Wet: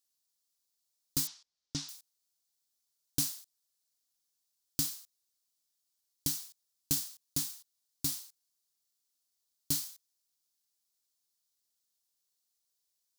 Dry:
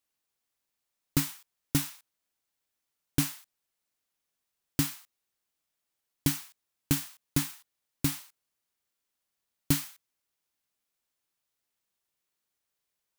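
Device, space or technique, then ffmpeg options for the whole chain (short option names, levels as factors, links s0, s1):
over-bright horn tweeter: -filter_complex "[0:a]highshelf=f=3300:t=q:w=1.5:g=11,alimiter=limit=0.447:level=0:latency=1:release=308,asettb=1/sr,asplit=3[s0][s1][s2];[s0]atrim=end=1.274[s3];[s1]atrim=start=1.27:end=1.89,asetpts=PTS-STARTPTS,afade=t=in:d=0.004:c=qsin,afade=t=out:st=0.616:d=0.004:c=qsin,lowpass=f=5800:w=0.5412,lowpass=f=5800:w=1.3066[s4];[s2]atrim=start=1.886[s5];[s3][s4]acrossfade=d=0.004:c1=hsin:c2=qsin[s6];[s6][s5]acrossfade=d=0.004:c1=qsin:c2=hsin,volume=0.376"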